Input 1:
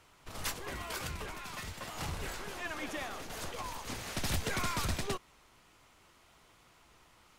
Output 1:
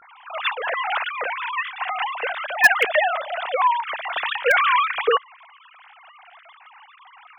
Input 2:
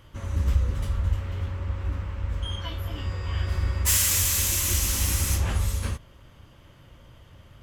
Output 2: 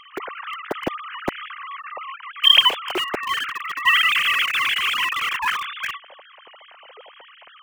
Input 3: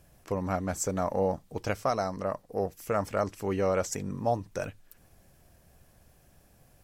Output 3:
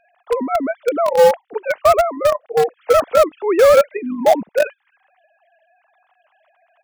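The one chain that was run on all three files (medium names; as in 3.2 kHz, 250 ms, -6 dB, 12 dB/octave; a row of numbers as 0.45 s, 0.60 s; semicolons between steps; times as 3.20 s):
formants replaced by sine waves; in parallel at -12 dB: bit crusher 4-bit; on the sum: peak normalisation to -1.5 dBFS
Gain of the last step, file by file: +15.5 dB, +1.0 dB, +13.5 dB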